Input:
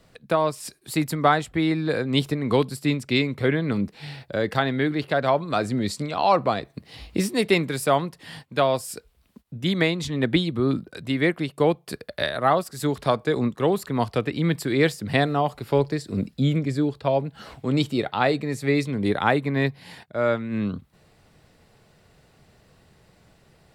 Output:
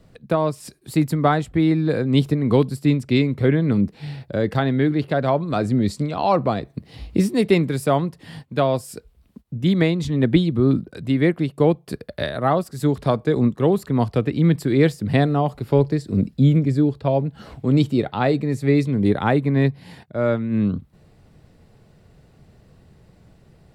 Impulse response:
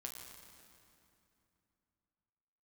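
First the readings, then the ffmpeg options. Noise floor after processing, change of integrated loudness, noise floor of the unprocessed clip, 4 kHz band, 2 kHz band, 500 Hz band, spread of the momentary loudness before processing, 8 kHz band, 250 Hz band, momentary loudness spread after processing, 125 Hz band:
−54 dBFS, +3.5 dB, −59 dBFS, −3.5 dB, −2.5 dB, +2.5 dB, 9 LU, −3.5 dB, +5.5 dB, 8 LU, +7.0 dB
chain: -af "lowshelf=frequency=500:gain=11.5,volume=-3.5dB"

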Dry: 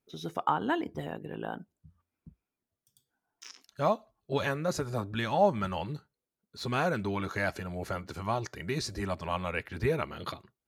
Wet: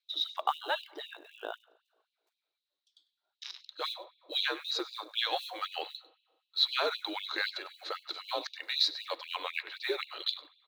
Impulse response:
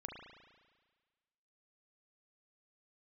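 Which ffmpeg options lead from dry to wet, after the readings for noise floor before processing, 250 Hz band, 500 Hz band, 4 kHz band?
below −85 dBFS, −14.5 dB, −8.5 dB, +12.0 dB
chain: -filter_complex "[0:a]lowpass=frequency=4000:width_type=q:width=9.9,equalizer=frequency=62:width=5:gain=-11,afreqshift=-77,acrusher=bits=8:mode=log:mix=0:aa=0.000001,aecho=1:1:99:0.119,asplit=2[link_01][link_02];[1:a]atrim=start_sample=2205[link_03];[link_02][link_03]afir=irnorm=-1:irlink=0,volume=-14.5dB[link_04];[link_01][link_04]amix=inputs=2:normalize=0,afftfilt=real='re*gte(b*sr/1024,260*pow(2500/260,0.5+0.5*sin(2*PI*3.9*pts/sr)))':imag='im*gte(b*sr/1024,260*pow(2500/260,0.5+0.5*sin(2*PI*3.9*pts/sr)))':win_size=1024:overlap=0.75,volume=-2.5dB"

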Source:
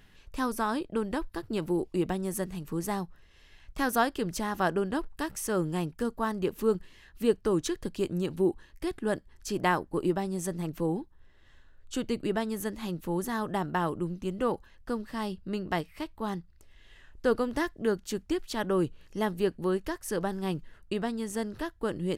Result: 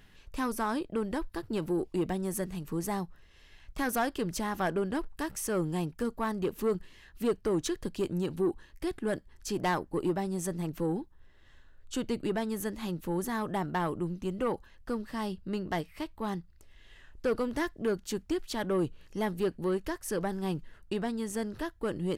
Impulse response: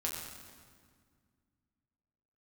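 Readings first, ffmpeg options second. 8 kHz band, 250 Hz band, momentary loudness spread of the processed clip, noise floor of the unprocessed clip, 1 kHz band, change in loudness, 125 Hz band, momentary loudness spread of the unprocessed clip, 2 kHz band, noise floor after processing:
−0.5 dB, −1.5 dB, 6 LU, −58 dBFS, −2.5 dB, −2.0 dB, −1.0 dB, 8 LU, −2.5 dB, −58 dBFS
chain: -af "asoftclip=type=tanh:threshold=-21.5dB"

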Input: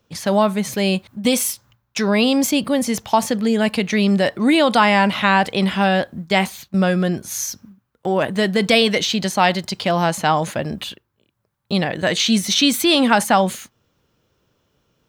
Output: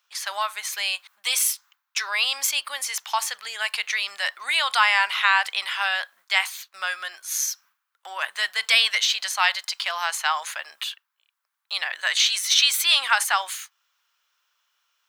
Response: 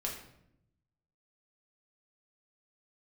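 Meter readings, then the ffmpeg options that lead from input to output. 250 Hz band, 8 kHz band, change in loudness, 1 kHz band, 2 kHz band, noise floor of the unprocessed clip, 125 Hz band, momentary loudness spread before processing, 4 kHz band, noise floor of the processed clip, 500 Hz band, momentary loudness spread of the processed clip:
below −40 dB, 0.0 dB, −4.5 dB, −7.0 dB, 0.0 dB, −71 dBFS, below −40 dB, 9 LU, 0.0 dB, −80 dBFS, −22.0 dB, 13 LU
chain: -af "highpass=frequency=1100:width=0.5412,highpass=frequency=1100:width=1.3066"

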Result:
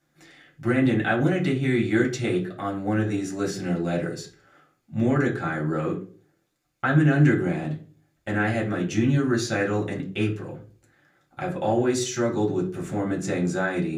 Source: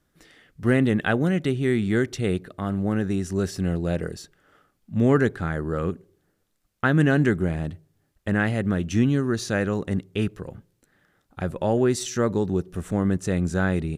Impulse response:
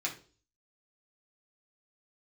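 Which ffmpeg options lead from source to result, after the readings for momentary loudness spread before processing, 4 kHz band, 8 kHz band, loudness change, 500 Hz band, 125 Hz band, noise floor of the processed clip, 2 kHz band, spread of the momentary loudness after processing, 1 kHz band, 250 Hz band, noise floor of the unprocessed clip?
10 LU, +0.5 dB, +1.0 dB, −0.5 dB, −1.0 dB, −1.0 dB, −70 dBFS, +0.5 dB, 11 LU, +1.5 dB, −0.5 dB, −71 dBFS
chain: -filter_complex "[0:a]equalizer=frequency=600:width_type=o:width=0.77:gain=2.5,alimiter=limit=-13dB:level=0:latency=1:release=67[link_01];[1:a]atrim=start_sample=2205[link_02];[link_01][link_02]afir=irnorm=-1:irlink=0,volume=-1.5dB"

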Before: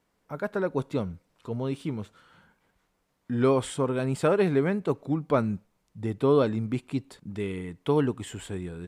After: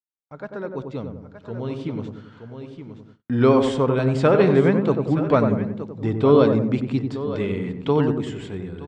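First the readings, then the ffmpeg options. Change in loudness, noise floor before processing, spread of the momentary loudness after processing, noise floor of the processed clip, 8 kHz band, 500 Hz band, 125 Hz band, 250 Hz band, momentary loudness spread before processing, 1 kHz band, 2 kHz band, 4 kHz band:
+7.5 dB, −74 dBFS, 21 LU, −54 dBFS, can't be measured, +6.5 dB, +7.0 dB, +7.0 dB, 14 LU, +6.5 dB, +5.5 dB, +5.5 dB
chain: -filter_complex "[0:a]lowpass=frequency=6100:width=0.5412,lowpass=frequency=6100:width=1.3066,asplit=2[link_01][link_02];[link_02]aecho=0:1:921:0.224[link_03];[link_01][link_03]amix=inputs=2:normalize=0,dynaudnorm=framelen=370:gausssize=11:maxgain=15dB,asplit=2[link_04][link_05];[link_05]adelay=93,lowpass=frequency=870:poles=1,volume=-4dB,asplit=2[link_06][link_07];[link_07]adelay=93,lowpass=frequency=870:poles=1,volume=0.55,asplit=2[link_08][link_09];[link_09]adelay=93,lowpass=frequency=870:poles=1,volume=0.55,asplit=2[link_10][link_11];[link_11]adelay=93,lowpass=frequency=870:poles=1,volume=0.55,asplit=2[link_12][link_13];[link_13]adelay=93,lowpass=frequency=870:poles=1,volume=0.55,asplit=2[link_14][link_15];[link_15]adelay=93,lowpass=frequency=870:poles=1,volume=0.55,asplit=2[link_16][link_17];[link_17]adelay=93,lowpass=frequency=870:poles=1,volume=0.55[link_18];[link_06][link_08][link_10][link_12][link_14][link_16][link_18]amix=inputs=7:normalize=0[link_19];[link_04][link_19]amix=inputs=2:normalize=0,agate=range=-39dB:threshold=-44dB:ratio=16:detection=peak,volume=-4dB"

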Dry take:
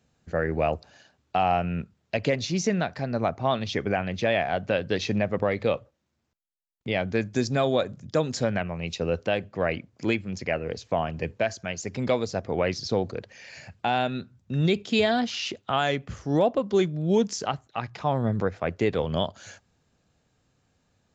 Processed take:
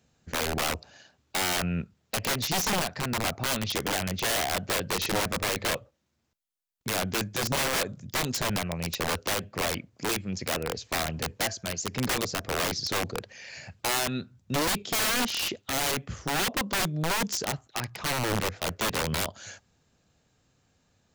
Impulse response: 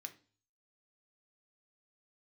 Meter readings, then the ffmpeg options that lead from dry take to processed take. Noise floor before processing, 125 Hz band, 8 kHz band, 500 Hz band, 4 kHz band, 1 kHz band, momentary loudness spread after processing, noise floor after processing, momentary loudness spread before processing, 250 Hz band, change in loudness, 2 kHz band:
−73 dBFS, −4.5 dB, can't be measured, −8.0 dB, +4.5 dB, −2.5 dB, 7 LU, −72 dBFS, 8 LU, −5.5 dB, −1.5 dB, +1.5 dB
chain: -af "highshelf=frequency=3100:gain=4,aeval=exprs='(mod(11.9*val(0)+1,2)-1)/11.9':channel_layout=same"

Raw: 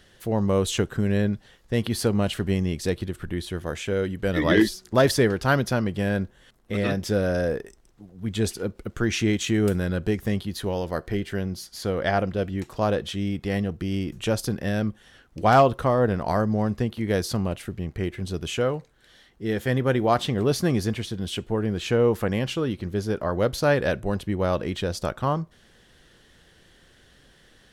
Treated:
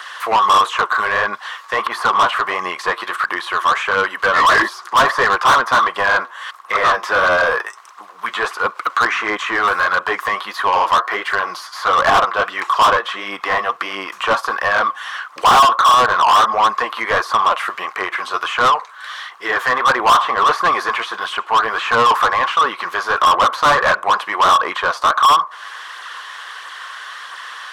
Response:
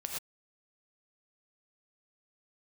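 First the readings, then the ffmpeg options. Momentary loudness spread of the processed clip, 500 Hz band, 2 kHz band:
15 LU, +2.0 dB, +16.0 dB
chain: -filter_complex "[0:a]highpass=frequency=1100:width_type=q:width=8.1,acrossover=split=1500[link_01][link_02];[link_02]acompressor=threshold=-43dB:ratio=6[link_03];[link_01][link_03]amix=inputs=2:normalize=0,flanger=delay=0.1:depth=8.7:regen=38:speed=1.5:shape=sinusoidal,acrossover=split=2600[link_04][link_05];[link_05]acompressor=threshold=-56dB:ratio=4:attack=1:release=60[link_06];[link_04][link_06]amix=inputs=2:normalize=0,asplit=2[link_07][link_08];[link_08]highpass=frequency=720:poles=1,volume=34dB,asoftclip=type=tanh:threshold=-3.5dB[link_09];[link_07][link_09]amix=inputs=2:normalize=0,lowpass=frequency=4100:poles=1,volume=-6dB"

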